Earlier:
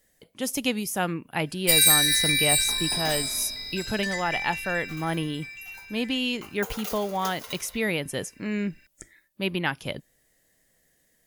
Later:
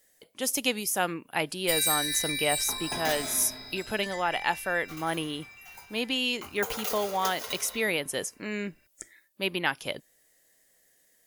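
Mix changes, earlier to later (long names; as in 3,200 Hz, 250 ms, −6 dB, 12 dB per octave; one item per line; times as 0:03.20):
speech: add bass and treble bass −11 dB, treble +3 dB
first sound −9.0 dB
second sound: send +7.0 dB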